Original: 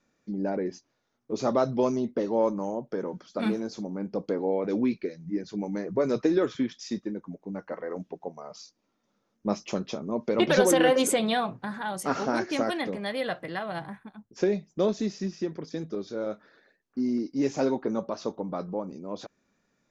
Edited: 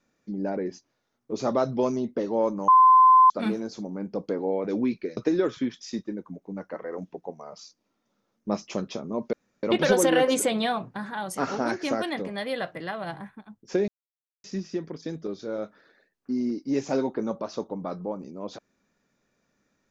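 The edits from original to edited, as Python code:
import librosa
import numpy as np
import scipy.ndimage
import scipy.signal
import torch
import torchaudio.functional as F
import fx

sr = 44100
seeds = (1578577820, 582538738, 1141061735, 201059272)

y = fx.edit(x, sr, fx.bleep(start_s=2.68, length_s=0.62, hz=1030.0, db=-11.5),
    fx.cut(start_s=5.17, length_s=0.98),
    fx.insert_room_tone(at_s=10.31, length_s=0.3),
    fx.silence(start_s=14.56, length_s=0.56), tone=tone)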